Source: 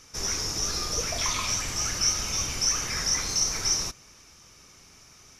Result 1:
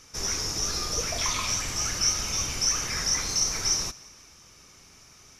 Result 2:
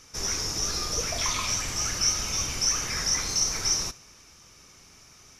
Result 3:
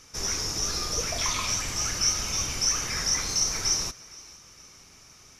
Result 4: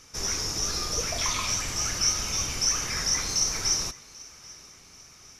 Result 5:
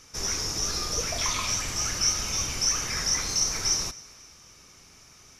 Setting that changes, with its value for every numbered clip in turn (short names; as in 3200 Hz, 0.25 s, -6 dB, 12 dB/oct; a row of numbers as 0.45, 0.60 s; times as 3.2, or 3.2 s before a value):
thinning echo, time: 174, 70, 463, 788, 260 ms